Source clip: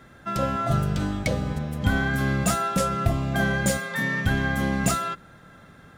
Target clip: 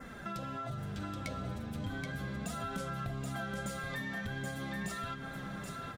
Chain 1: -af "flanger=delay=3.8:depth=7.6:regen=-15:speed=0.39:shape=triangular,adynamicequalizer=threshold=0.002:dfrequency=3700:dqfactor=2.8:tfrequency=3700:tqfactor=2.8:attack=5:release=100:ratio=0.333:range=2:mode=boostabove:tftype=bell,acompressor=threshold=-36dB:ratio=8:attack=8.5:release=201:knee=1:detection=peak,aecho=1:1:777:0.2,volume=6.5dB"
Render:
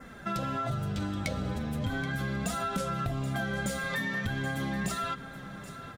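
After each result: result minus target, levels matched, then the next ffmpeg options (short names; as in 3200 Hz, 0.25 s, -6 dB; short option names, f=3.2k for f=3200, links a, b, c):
compressor: peak gain reduction -8 dB; echo-to-direct -9.5 dB
-af "flanger=delay=3.8:depth=7.6:regen=-15:speed=0.39:shape=triangular,adynamicequalizer=threshold=0.002:dfrequency=3700:dqfactor=2.8:tfrequency=3700:tqfactor=2.8:attack=5:release=100:ratio=0.333:range=2:mode=boostabove:tftype=bell,acompressor=threshold=-45dB:ratio=8:attack=8.5:release=201:knee=1:detection=peak,aecho=1:1:777:0.2,volume=6.5dB"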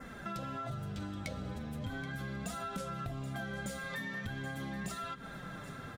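echo-to-direct -9.5 dB
-af "flanger=delay=3.8:depth=7.6:regen=-15:speed=0.39:shape=triangular,adynamicequalizer=threshold=0.002:dfrequency=3700:dqfactor=2.8:tfrequency=3700:tqfactor=2.8:attack=5:release=100:ratio=0.333:range=2:mode=boostabove:tftype=bell,acompressor=threshold=-45dB:ratio=8:attack=8.5:release=201:knee=1:detection=peak,aecho=1:1:777:0.596,volume=6.5dB"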